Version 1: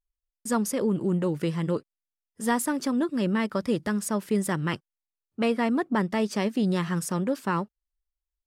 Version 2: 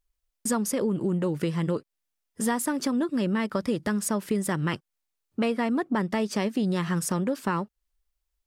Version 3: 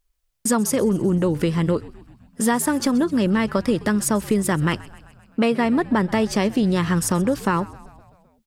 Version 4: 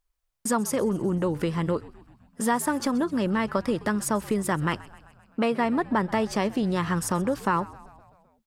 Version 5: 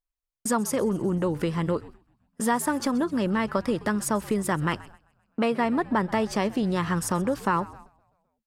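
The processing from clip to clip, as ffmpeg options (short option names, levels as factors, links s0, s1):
-af "acompressor=threshold=0.02:ratio=3,volume=2.51"
-filter_complex "[0:a]asplit=7[s0][s1][s2][s3][s4][s5][s6];[s1]adelay=129,afreqshift=-71,volume=0.1[s7];[s2]adelay=258,afreqshift=-142,volume=0.0638[s8];[s3]adelay=387,afreqshift=-213,volume=0.0407[s9];[s4]adelay=516,afreqshift=-284,volume=0.0263[s10];[s5]adelay=645,afreqshift=-355,volume=0.0168[s11];[s6]adelay=774,afreqshift=-426,volume=0.0107[s12];[s0][s7][s8][s9][s10][s11][s12]amix=inputs=7:normalize=0,volume=2.11"
-af "equalizer=f=980:t=o:w=1.7:g=6,volume=0.447"
-af "agate=range=0.251:threshold=0.00631:ratio=16:detection=peak"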